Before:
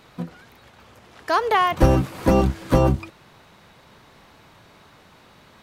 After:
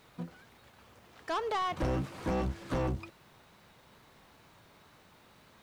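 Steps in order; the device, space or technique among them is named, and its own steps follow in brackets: compact cassette (saturation -18.5 dBFS, distortion -9 dB; low-pass 9.4 kHz 12 dB/octave; wow and flutter; white noise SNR 35 dB); trim -9 dB

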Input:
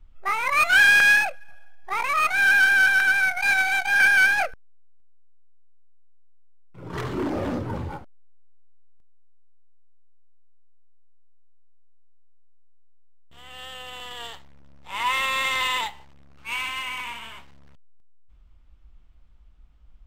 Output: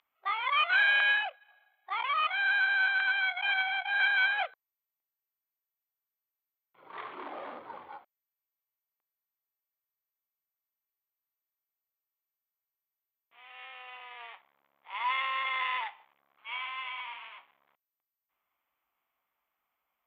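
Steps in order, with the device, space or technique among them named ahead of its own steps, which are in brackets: toy sound module (decimation joined by straight lines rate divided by 8×; class-D stage that switches slowly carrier 12 kHz; cabinet simulation 700–3700 Hz, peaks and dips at 750 Hz +4 dB, 1.1 kHz +6 dB, 2.2 kHz +6 dB, 3.3 kHz +7 dB); trim -8.5 dB

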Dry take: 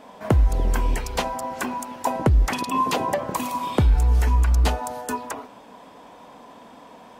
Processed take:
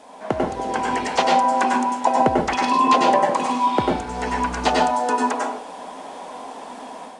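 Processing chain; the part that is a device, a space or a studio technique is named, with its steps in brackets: filmed off a television (band-pass 250–6100 Hz; peaking EQ 770 Hz +5 dB 0.41 oct; reverberation RT60 0.35 s, pre-delay 92 ms, DRR 0 dB; white noise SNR 30 dB; level rider gain up to 7 dB; trim -1.5 dB; AAC 96 kbps 22.05 kHz)

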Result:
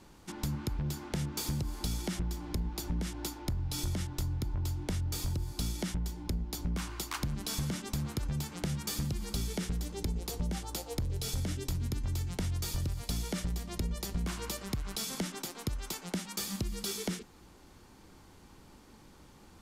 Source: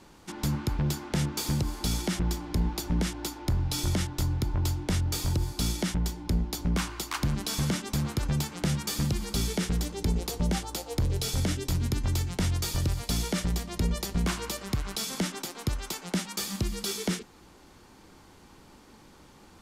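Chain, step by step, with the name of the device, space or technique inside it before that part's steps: ASMR close-microphone chain (bass shelf 170 Hz +5.5 dB; compression, threshold -26 dBFS, peak gain reduction 8.5 dB; treble shelf 9 kHz +4 dB); trim -4.5 dB

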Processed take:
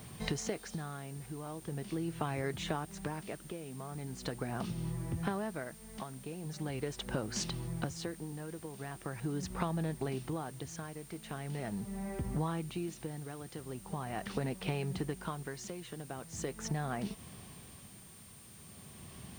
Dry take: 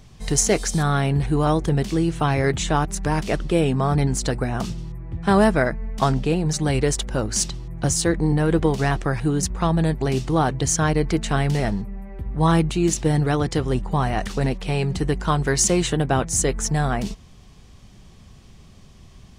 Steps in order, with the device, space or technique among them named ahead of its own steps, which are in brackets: medium wave at night (band-pass 110–3900 Hz; compression 10:1, threshold -33 dBFS, peak gain reduction 21 dB; tremolo 0.41 Hz, depth 67%; whistle 9 kHz -58 dBFS; white noise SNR 20 dB); trim +1.5 dB

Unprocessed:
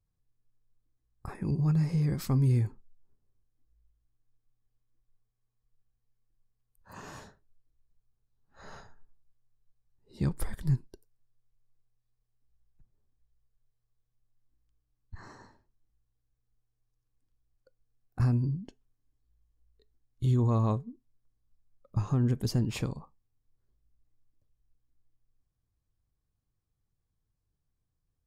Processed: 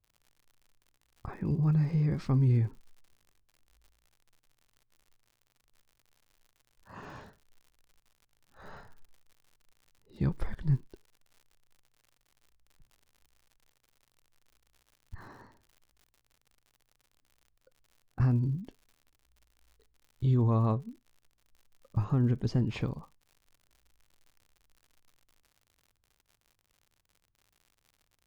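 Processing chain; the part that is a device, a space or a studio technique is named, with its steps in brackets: lo-fi chain (low-pass 3.4 kHz 12 dB/octave; wow and flutter; crackle 97 per s -50 dBFS)

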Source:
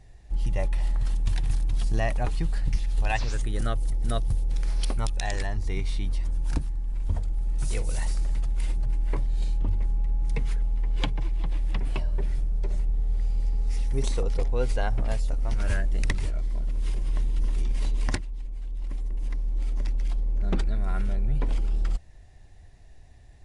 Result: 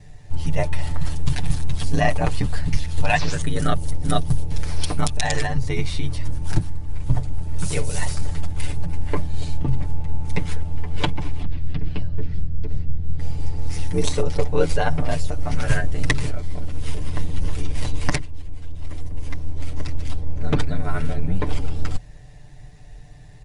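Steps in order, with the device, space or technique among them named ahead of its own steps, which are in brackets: 11.43–13.19 s: FFT filter 150 Hz 0 dB, 350 Hz -5 dB, 510 Hz -10 dB, 990 Hz -14 dB, 1.4 kHz -9 dB, 4.8 kHz -8 dB, 9.1 kHz -26 dB; ring-modulated robot voice (ring modulator 42 Hz; comb 6.8 ms, depth 85%); trim +9 dB

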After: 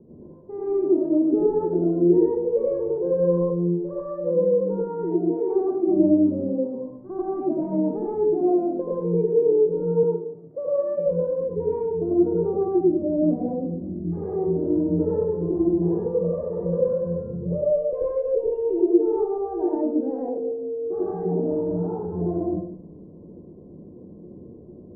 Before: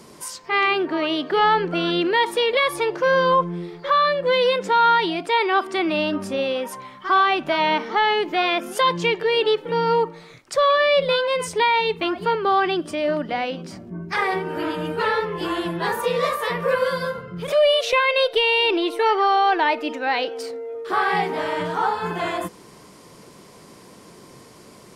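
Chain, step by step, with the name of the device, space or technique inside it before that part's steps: next room (low-pass 460 Hz 24 dB/octave; reverberation RT60 0.60 s, pre-delay 81 ms, DRR -6.5 dB); 10.03–11.06 s: high-pass 160 Hz 12 dB/octave; trim -2.5 dB

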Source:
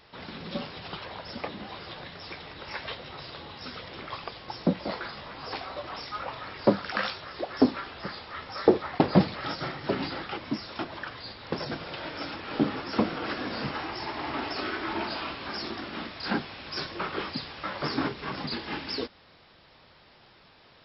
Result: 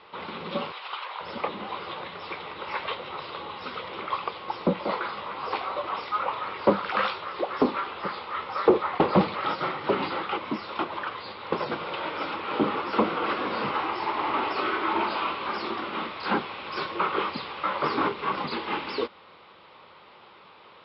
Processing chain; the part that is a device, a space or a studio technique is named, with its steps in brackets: overdrive pedal into a guitar cabinet (overdrive pedal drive 19 dB, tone 1.2 kHz, clips at -5 dBFS; cabinet simulation 76–4000 Hz, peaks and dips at 130 Hz -7 dB, 270 Hz -7 dB, 680 Hz -8 dB, 1.1 kHz +3 dB, 1.7 kHz -9 dB); 0.72–1.21 s: high-pass 900 Hz 12 dB/octave

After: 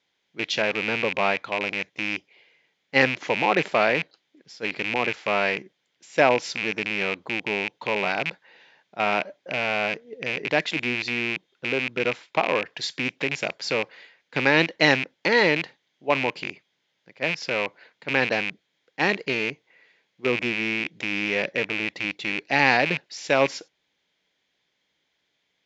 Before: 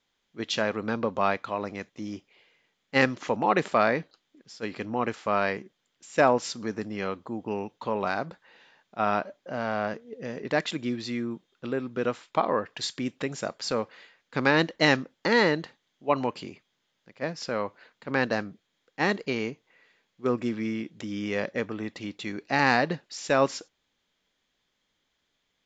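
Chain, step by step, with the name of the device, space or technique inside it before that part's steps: car door speaker with a rattle (rattle on loud lows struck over -40 dBFS, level -18 dBFS; cabinet simulation 94–6500 Hz, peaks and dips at 100 Hz -6 dB, 230 Hz -6 dB, 1.2 kHz -6 dB, 2.2 kHz +4 dB); trim +2.5 dB

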